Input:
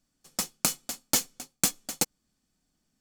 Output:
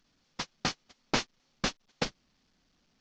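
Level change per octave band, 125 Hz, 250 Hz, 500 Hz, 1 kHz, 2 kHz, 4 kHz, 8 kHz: +1.0 dB, -0.5 dB, +2.0 dB, +1.5 dB, +2.5 dB, -2.5 dB, -15.0 dB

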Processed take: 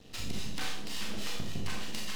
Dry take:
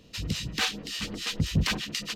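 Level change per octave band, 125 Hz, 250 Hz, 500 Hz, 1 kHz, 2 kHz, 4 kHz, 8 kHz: -12.0 dB, -8.0 dB, -4.0 dB, -5.5 dB, -8.5 dB, -8.5 dB, -6.0 dB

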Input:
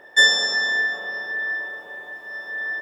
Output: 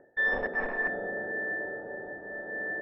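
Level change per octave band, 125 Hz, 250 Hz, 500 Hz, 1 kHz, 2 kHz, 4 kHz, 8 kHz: no reading, +5.0 dB, +2.0 dB, -2.0 dB, -9.5 dB, under -30 dB, under -40 dB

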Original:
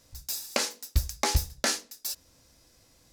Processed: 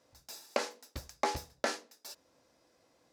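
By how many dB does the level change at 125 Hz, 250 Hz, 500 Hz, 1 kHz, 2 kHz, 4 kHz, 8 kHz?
-18.0 dB, -5.5 dB, -0.5 dB, -1.5 dB, -5.5 dB, -11.0 dB, -14.0 dB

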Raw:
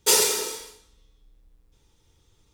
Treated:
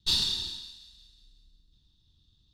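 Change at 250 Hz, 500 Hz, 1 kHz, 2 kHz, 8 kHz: -7.5 dB, -27.5 dB, -19.0 dB, -13.5 dB, -19.0 dB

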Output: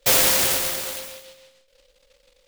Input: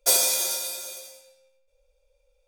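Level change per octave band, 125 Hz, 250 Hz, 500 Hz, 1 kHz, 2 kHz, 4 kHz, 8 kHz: no reading, +14.5 dB, +6.5 dB, +8.0 dB, +10.0 dB, +4.0 dB, +1.0 dB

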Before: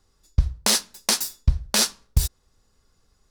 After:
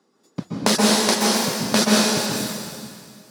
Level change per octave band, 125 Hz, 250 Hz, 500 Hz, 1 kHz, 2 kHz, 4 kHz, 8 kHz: -4.0 dB, +16.0 dB, +14.0 dB, +11.0 dB, +7.5 dB, +4.0 dB, +2.0 dB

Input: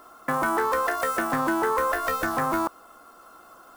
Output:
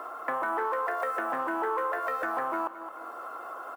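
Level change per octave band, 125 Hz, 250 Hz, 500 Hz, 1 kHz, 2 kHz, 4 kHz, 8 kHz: under -20 dB, -10.5 dB, -5.0 dB, -4.0 dB, -5.5 dB, under -10 dB, under -15 dB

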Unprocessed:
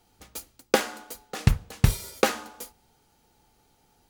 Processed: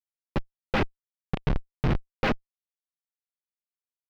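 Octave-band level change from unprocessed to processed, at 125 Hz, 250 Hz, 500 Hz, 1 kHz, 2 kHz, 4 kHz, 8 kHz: -4.0 dB, +0.5 dB, -4.0 dB, -2.0 dB, -1.5 dB, -6.5 dB, under -20 dB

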